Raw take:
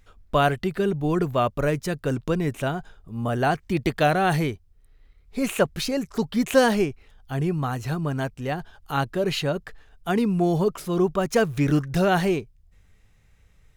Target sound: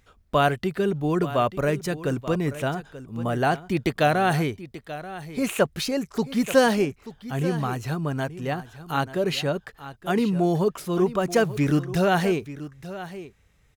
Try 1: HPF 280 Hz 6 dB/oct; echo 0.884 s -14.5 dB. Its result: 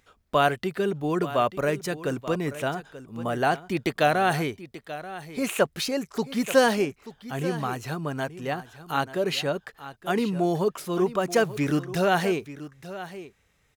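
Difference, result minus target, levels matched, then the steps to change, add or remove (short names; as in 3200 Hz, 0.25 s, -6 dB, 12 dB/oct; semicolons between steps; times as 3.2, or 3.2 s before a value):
125 Hz band -3.5 dB
change: HPF 80 Hz 6 dB/oct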